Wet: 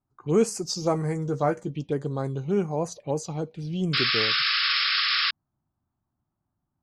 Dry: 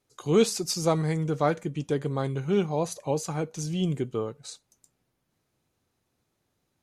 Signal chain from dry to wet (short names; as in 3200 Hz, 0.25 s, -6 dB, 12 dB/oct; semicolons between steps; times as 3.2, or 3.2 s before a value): envelope phaser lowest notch 470 Hz, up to 3700 Hz, full sweep at -22.5 dBFS; 0.66–1.71 doubler 15 ms -9 dB; low-pass opened by the level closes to 910 Hz, open at -24.5 dBFS; 3.93–5.31 painted sound noise 1100–5400 Hz -24 dBFS